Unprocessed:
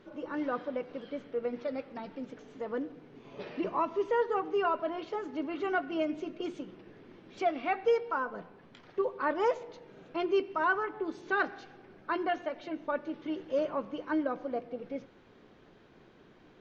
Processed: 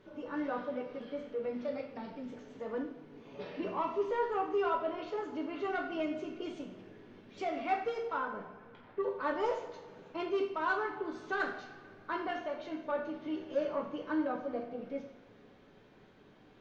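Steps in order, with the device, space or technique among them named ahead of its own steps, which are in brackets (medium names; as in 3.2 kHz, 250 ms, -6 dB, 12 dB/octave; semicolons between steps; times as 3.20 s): 8.14–8.99 s: low-pass 3.3 kHz -> 2.2 kHz 12 dB/octave; saturation between pre-emphasis and de-emphasis (treble shelf 3.5 kHz +10 dB; saturation -22.5 dBFS, distortion -17 dB; treble shelf 3.5 kHz -10 dB); two-slope reverb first 0.52 s, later 2.4 s, from -18 dB, DRR 0 dB; trim -4.5 dB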